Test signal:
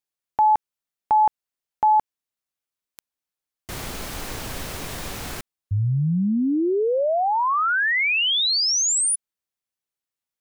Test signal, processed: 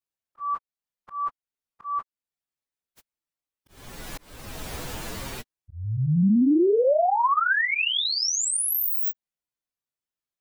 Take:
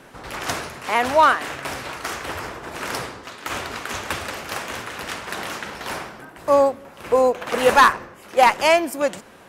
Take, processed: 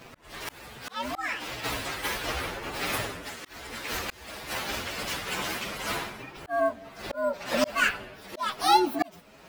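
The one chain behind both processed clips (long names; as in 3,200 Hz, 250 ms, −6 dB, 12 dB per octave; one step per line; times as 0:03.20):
partials spread apart or drawn together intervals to 124%
volume swells 558 ms
level +3 dB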